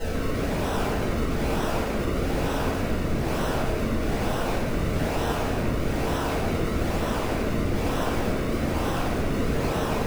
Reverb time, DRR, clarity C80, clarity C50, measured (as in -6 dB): 1.7 s, -13.5 dB, 0.5 dB, -2.0 dB